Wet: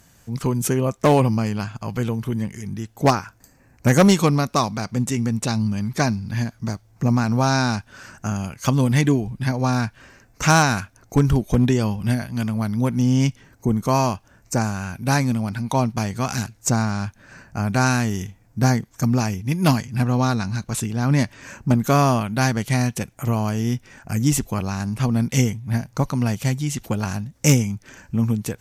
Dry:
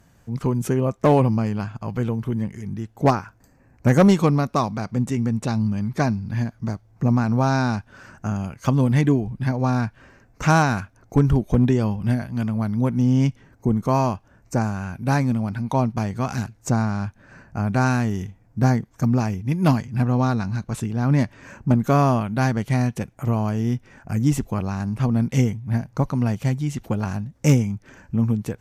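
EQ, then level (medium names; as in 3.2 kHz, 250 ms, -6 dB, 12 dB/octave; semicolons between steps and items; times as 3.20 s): treble shelf 2.5 kHz +11.5 dB; 0.0 dB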